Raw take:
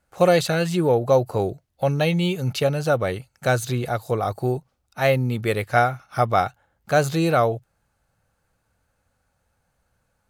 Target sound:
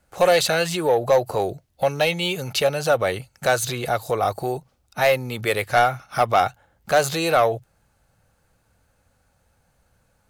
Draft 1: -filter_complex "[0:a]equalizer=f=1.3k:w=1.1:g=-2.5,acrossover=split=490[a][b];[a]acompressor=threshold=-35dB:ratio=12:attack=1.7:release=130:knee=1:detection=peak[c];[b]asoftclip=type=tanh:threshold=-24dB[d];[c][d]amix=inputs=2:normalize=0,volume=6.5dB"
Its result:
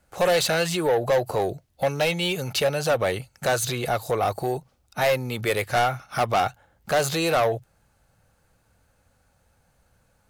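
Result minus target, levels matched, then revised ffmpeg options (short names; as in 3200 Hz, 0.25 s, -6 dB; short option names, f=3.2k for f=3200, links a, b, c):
soft clip: distortion +8 dB
-filter_complex "[0:a]equalizer=f=1.3k:w=1.1:g=-2.5,acrossover=split=490[a][b];[a]acompressor=threshold=-35dB:ratio=12:attack=1.7:release=130:knee=1:detection=peak[c];[b]asoftclip=type=tanh:threshold=-16dB[d];[c][d]amix=inputs=2:normalize=0,volume=6.5dB"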